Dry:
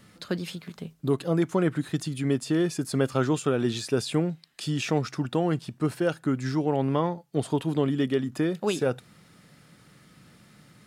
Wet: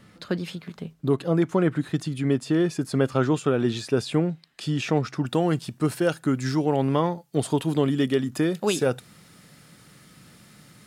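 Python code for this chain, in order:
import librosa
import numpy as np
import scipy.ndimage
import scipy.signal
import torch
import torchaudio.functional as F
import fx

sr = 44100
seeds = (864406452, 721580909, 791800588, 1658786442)

y = fx.high_shelf(x, sr, hz=4800.0, db=fx.steps((0.0, -7.5), (5.24, 6.5)))
y = y * 10.0 ** (2.5 / 20.0)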